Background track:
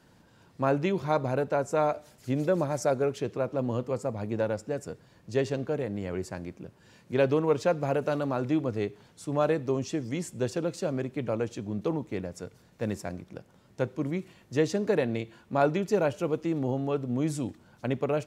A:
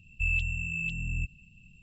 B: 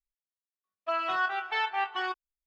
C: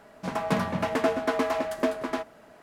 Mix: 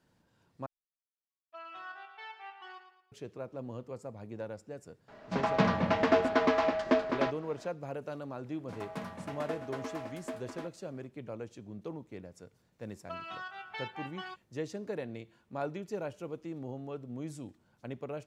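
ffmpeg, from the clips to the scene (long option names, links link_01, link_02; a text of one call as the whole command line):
ffmpeg -i bed.wav -i cue0.wav -i cue1.wav -i cue2.wav -filter_complex "[2:a]asplit=2[link_01][link_02];[3:a]asplit=2[link_03][link_04];[0:a]volume=-12dB[link_05];[link_01]aecho=1:1:112|224|336|448:0.355|0.135|0.0512|0.0195[link_06];[link_03]lowpass=frequency=5500:width=0.5412,lowpass=frequency=5500:width=1.3066[link_07];[link_02]acrossover=split=160|3000[link_08][link_09][link_10];[link_09]acompressor=threshold=-34dB:ratio=6:attack=41:release=514:knee=2.83:detection=peak[link_11];[link_08][link_11][link_10]amix=inputs=3:normalize=0[link_12];[link_05]asplit=2[link_13][link_14];[link_13]atrim=end=0.664[link_15];[link_06]atrim=end=2.46,asetpts=PTS-STARTPTS,volume=-17.5dB[link_16];[link_14]atrim=start=3.116[link_17];[link_07]atrim=end=2.62,asetpts=PTS-STARTPTS,volume=-0.5dB,afade=type=in:duration=0.004:curve=hsin,afade=type=out:start_time=2.616:duration=0.004:curve=hsin,adelay=5080[link_18];[link_04]atrim=end=2.62,asetpts=PTS-STARTPTS,volume=-14.5dB,afade=type=in:duration=0.004:curve=hsin,afade=type=out:start_time=2.616:duration=0.004:curve=hsin,adelay=8450[link_19];[link_12]atrim=end=2.46,asetpts=PTS-STARTPTS,volume=-8dB,afade=type=in:duration=0.004:curve=hsin,afade=type=out:start_time=2.456:duration=0.004:curve=hsin,adelay=12220[link_20];[link_15][link_16]acrossfade=duration=0.004:curve1=hsin:curve2=hsin[link_21];[link_21][link_17]acrossfade=duration=0.004:curve1=hsin:curve2=hsin[link_22];[link_22][link_18][link_19][link_20]amix=inputs=4:normalize=0" out.wav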